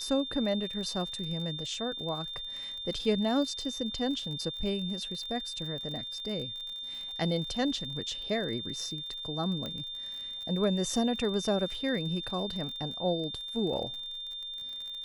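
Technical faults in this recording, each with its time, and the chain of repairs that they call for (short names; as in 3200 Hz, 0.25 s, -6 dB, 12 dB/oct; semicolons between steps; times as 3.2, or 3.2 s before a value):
crackle 39/s -38 dBFS
tone 3600 Hz -37 dBFS
9.66 pop -24 dBFS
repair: de-click; notch 3600 Hz, Q 30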